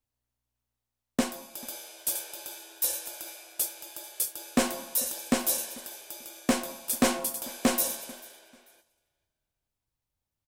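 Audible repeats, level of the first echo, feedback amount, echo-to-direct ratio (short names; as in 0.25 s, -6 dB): 2, -23.0 dB, 29%, -22.5 dB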